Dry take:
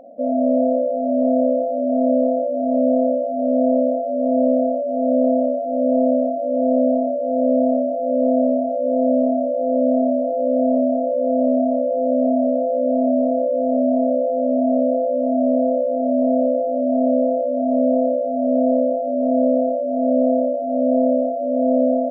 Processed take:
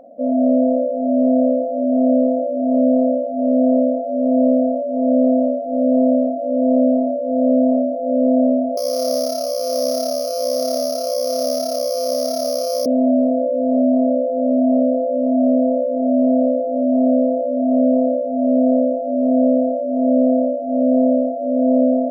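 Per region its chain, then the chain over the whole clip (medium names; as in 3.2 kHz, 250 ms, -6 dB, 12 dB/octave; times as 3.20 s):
8.77–12.86 s: sorted samples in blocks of 8 samples + high-pass 380 Hz 24 dB/octave
whole clip: de-hum 113.2 Hz, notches 17; dynamic bell 270 Hz, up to +4 dB, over -30 dBFS, Q 2.1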